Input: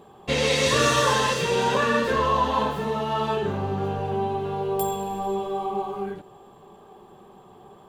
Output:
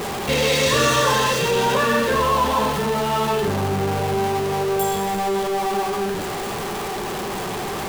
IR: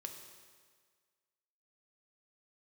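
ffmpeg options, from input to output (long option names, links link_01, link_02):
-af "aeval=exprs='val(0)+0.5*0.0841*sgn(val(0))':channel_layout=same"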